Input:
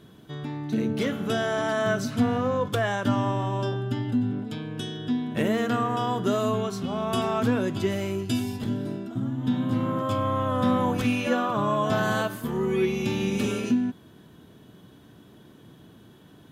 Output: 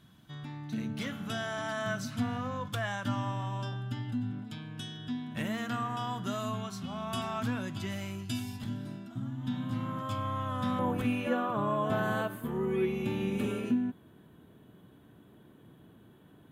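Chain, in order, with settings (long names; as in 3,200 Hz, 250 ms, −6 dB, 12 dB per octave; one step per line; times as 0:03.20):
parametric band 420 Hz −14.5 dB 0.93 octaves, from 0:10.79 5,400 Hz
level −5.5 dB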